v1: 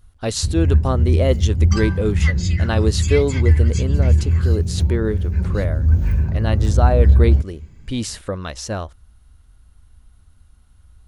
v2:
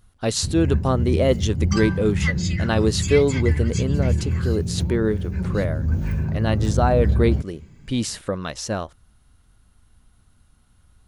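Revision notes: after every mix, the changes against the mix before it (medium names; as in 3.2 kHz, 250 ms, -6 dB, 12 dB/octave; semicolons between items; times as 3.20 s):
master: add resonant low shelf 100 Hz -7 dB, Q 1.5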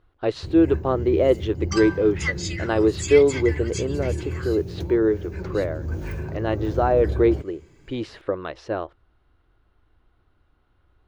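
speech: add distance through air 360 m; master: add resonant low shelf 270 Hz -6.5 dB, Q 3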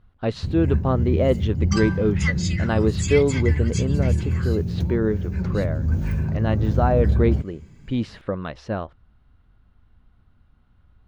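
master: add resonant low shelf 270 Hz +6.5 dB, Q 3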